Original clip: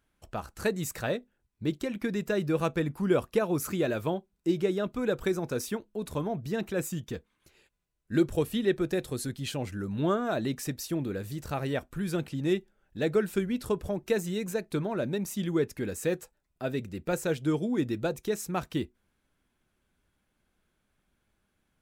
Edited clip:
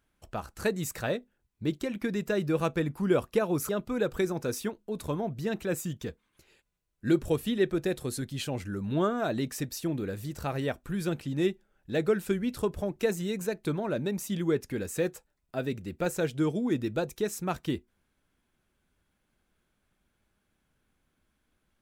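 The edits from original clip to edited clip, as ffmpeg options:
ffmpeg -i in.wav -filter_complex "[0:a]asplit=2[link_01][link_02];[link_01]atrim=end=3.692[link_03];[link_02]atrim=start=4.758[link_04];[link_03][link_04]acrossfade=duration=0.004:curve1=hsin:curve2=hsin" out.wav

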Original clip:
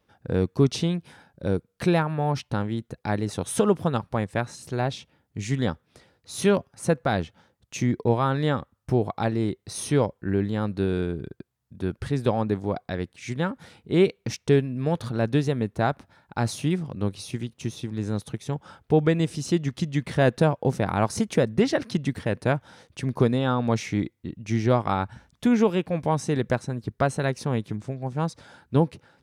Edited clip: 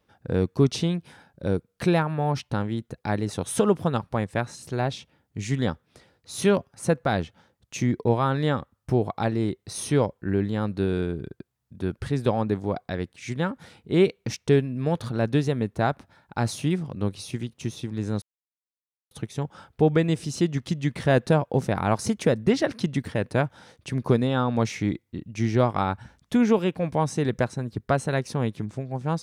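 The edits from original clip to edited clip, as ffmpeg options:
ffmpeg -i in.wav -filter_complex "[0:a]asplit=2[link_01][link_02];[link_01]atrim=end=18.22,asetpts=PTS-STARTPTS,afade=type=out:start_time=18.216:duration=0.004:curve=hsin,apad=pad_dur=0.89[link_03];[link_02]atrim=start=18.22,asetpts=PTS-STARTPTS,afade=type=in:duration=0.004:curve=hsin[link_04];[link_03][link_04]concat=n=2:v=0:a=1" out.wav

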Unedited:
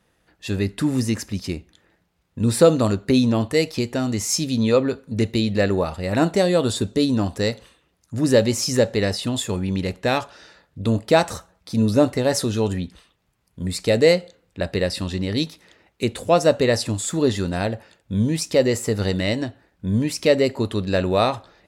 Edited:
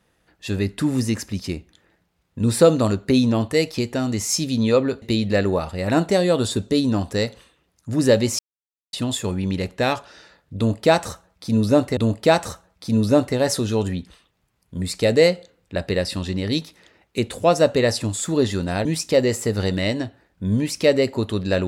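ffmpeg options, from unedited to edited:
ffmpeg -i in.wav -filter_complex "[0:a]asplit=6[link_01][link_02][link_03][link_04][link_05][link_06];[link_01]atrim=end=5.022[link_07];[link_02]atrim=start=5.268:end=8.64,asetpts=PTS-STARTPTS,afade=type=out:start_time=3.368:duration=0.004:curve=hsin[link_08];[link_03]atrim=start=8.64:end=9.18,asetpts=PTS-STARTPTS,volume=0[link_09];[link_04]atrim=start=9.18:end=12.222,asetpts=PTS-STARTPTS,afade=type=in:duration=0.004:curve=hsin[link_10];[link_05]atrim=start=10.818:end=17.702[link_11];[link_06]atrim=start=18.268[link_12];[link_08][link_09][link_10]concat=n=3:v=0:a=1[link_13];[link_07][link_13]acrossfade=duration=0.004:curve1=hsin:curve2=hsin[link_14];[link_14][link_11]acrossfade=duration=0.004:curve1=hsin:curve2=hsin[link_15];[link_15][link_12]acrossfade=duration=0.004:curve1=hsin:curve2=hsin" out.wav

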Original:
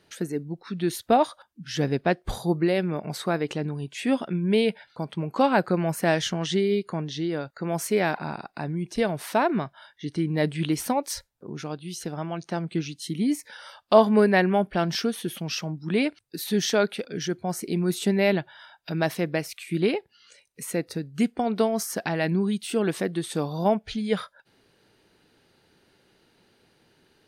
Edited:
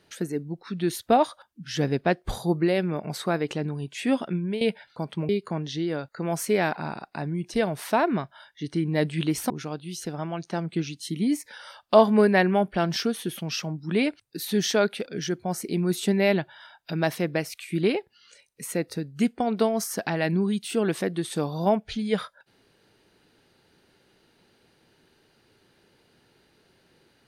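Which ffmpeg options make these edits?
ffmpeg -i in.wav -filter_complex "[0:a]asplit=4[link_01][link_02][link_03][link_04];[link_01]atrim=end=4.61,asetpts=PTS-STARTPTS,afade=type=out:start_time=4.34:duration=0.27:silence=0.199526[link_05];[link_02]atrim=start=4.61:end=5.292,asetpts=PTS-STARTPTS,afade=type=in:duration=0.004:curve=hsin:silence=0.199526[link_06];[link_03]atrim=start=6.708:end=10.922[link_07];[link_04]atrim=start=11.488[link_08];[link_05][link_06]concat=n=2:v=0:a=1[link_09];[link_09][link_07]acrossfade=duration=0.004:curve1=hsin:curve2=hsin[link_10];[link_10][link_08]acrossfade=duration=0.004:curve1=hsin:curve2=hsin" out.wav

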